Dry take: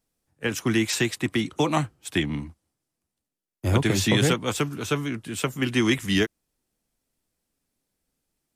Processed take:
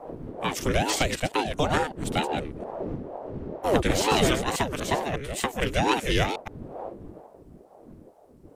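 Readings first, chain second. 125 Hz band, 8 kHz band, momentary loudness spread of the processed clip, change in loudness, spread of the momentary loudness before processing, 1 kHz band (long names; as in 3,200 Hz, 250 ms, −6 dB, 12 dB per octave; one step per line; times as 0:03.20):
−4.0 dB, −1.0 dB, 16 LU, −1.5 dB, 9 LU, +6.5 dB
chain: delay that plays each chunk backwards 120 ms, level −7 dB
wind on the microphone 180 Hz −38 dBFS
in parallel at −1 dB: downward compressor, threshold −38 dBFS, peak gain reduction 21 dB
on the sum: ring modulator whose carrier an LFO sweeps 400 Hz, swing 65%, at 2.2 Hz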